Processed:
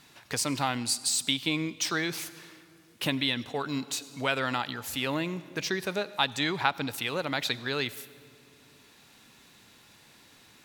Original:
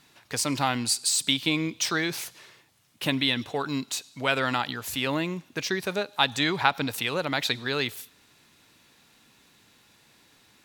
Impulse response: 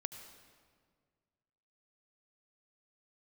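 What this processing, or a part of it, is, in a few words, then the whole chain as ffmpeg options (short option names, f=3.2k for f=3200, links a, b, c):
ducked reverb: -filter_complex "[0:a]asplit=3[a][b][c];[1:a]atrim=start_sample=2205[d];[b][d]afir=irnorm=-1:irlink=0[e];[c]apad=whole_len=469343[f];[e][f]sidechaincompress=threshold=-32dB:ratio=8:attack=11:release=1260,volume=6dB[g];[a][g]amix=inputs=2:normalize=0,volume=-5.5dB"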